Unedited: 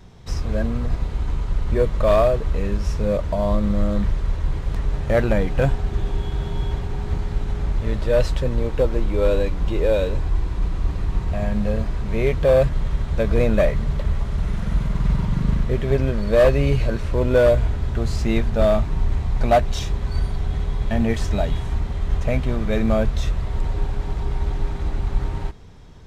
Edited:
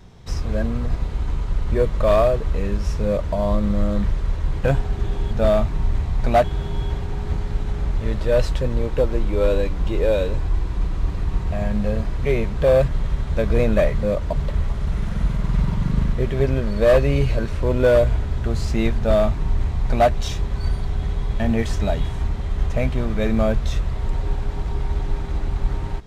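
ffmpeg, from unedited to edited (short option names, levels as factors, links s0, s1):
-filter_complex "[0:a]asplit=8[s0][s1][s2][s3][s4][s5][s6][s7];[s0]atrim=end=4.642[s8];[s1]atrim=start=5.578:end=6.252[s9];[s2]atrim=start=18.478:end=19.612[s10];[s3]atrim=start=6.248:end=11.982[s11];[s4]atrim=start=11.978:end=12.412,asetpts=PTS-STARTPTS,areverse[s12];[s5]atrim=start=12.408:end=13.842[s13];[s6]atrim=start=3.048:end=3.352[s14];[s7]atrim=start=13.838[s15];[s8][s9]acrossfade=d=0.004:c1=hsin:c2=hsin[s16];[s16][s10]acrossfade=d=0.004:c1=hsin:c2=hsin[s17];[s17][s11]acrossfade=d=0.004:c1=hsin:c2=hsin[s18];[s18][s12]acrossfade=d=0.004:c1=hsin:c2=hsin[s19];[s19][s13]acrossfade=d=0.004:c1=hsin:c2=hsin[s20];[s20][s14]acrossfade=d=0.004:c1=hsin:c2=hsin[s21];[s21][s15]acrossfade=d=0.004:c1=hsin:c2=hsin"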